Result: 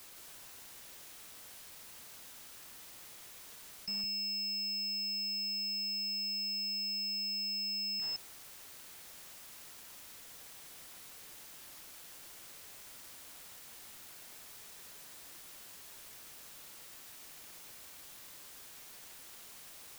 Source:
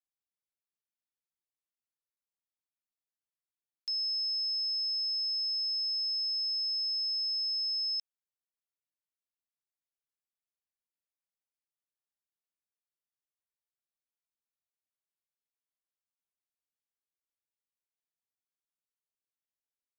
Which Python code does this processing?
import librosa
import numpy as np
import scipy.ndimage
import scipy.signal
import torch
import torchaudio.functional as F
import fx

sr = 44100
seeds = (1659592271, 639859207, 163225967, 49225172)

p1 = fx.quant_dither(x, sr, seeds[0], bits=10, dither='triangular')
p2 = fx.spec_gate(p1, sr, threshold_db=-20, keep='strong')
p3 = p2 + fx.echo_single(p2, sr, ms=162, db=-5.5, dry=0)
p4 = fx.slew_limit(p3, sr, full_power_hz=36.0)
y = p4 * librosa.db_to_amplitude(7.0)